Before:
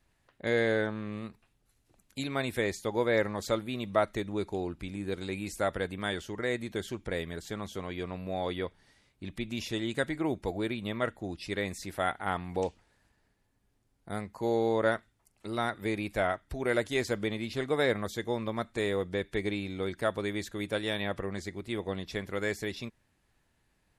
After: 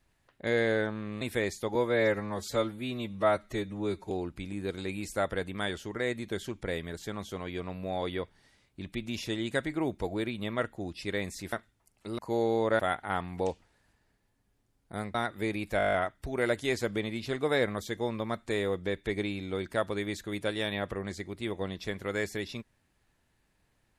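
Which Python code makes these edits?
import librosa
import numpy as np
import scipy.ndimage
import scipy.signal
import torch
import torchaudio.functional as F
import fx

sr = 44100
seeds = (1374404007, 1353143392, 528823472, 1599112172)

y = fx.edit(x, sr, fx.cut(start_s=1.21, length_s=1.22),
    fx.stretch_span(start_s=2.97, length_s=1.57, factor=1.5),
    fx.swap(start_s=11.96, length_s=2.35, other_s=14.92, other_length_s=0.66),
    fx.stutter(start_s=16.21, slice_s=0.02, count=9), tone=tone)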